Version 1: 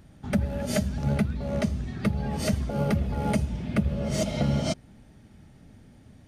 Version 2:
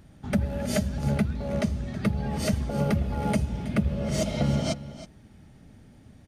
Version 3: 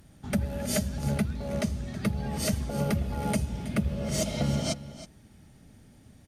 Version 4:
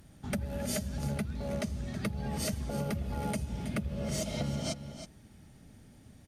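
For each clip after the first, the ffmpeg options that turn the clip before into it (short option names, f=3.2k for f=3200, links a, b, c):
-af "aecho=1:1:322:0.178"
-af "aemphasis=mode=production:type=cd,volume=-2.5dB"
-af "acompressor=threshold=-29dB:ratio=6,volume=-1dB"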